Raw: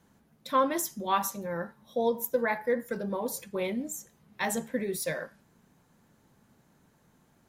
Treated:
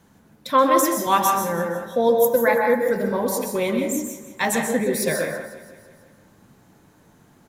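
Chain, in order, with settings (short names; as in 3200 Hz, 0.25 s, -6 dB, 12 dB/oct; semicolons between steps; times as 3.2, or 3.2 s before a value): 0.51–1.07 HPF 190 Hz; feedback echo 0.165 s, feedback 60%, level -16 dB; plate-style reverb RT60 0.64 s, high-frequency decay 0.55×, pre-delay 0.115 s, DRR 2.5 dB; gain +8 dB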